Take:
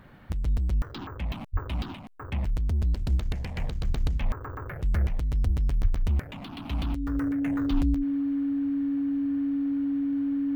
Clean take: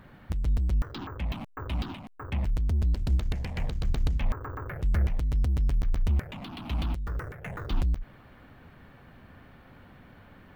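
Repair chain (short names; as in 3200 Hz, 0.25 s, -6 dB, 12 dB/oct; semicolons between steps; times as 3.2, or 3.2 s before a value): notch 280 Hz, Q 30; de-plosive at 1.52/5.45/5.81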